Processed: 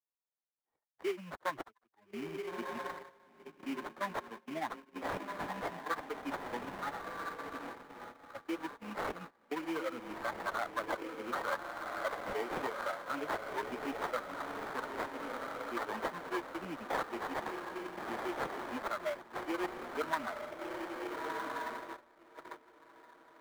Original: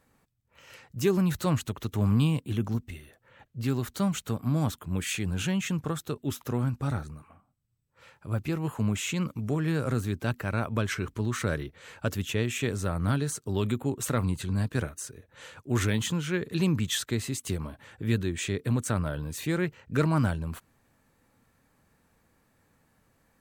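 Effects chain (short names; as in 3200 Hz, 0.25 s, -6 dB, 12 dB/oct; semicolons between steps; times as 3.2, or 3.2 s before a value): per-bin expansion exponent 3; reverse; compressor 8:1, threshold -41 dBFS, peak gain reduction 18 dB; reverse; HPF 250 Hz 24 dB/oct; bell 990 Hz +12.5 dB 0.26 oct; diffused feedback echo 1.368 s, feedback 45%, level -6 dB; gate -56 dBFS, range -19 dB; in parallel at +1 dB: limiter -39.5 dBFS, peak gain reduction 10.5 dB; on the sum: sample-rate reducer 2700 Hz, jitter 20%; three-band isolator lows -13 dB, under 370 Hz, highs -13 dB, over 2600 Hz; three-band squash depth 40%; gain +8 dB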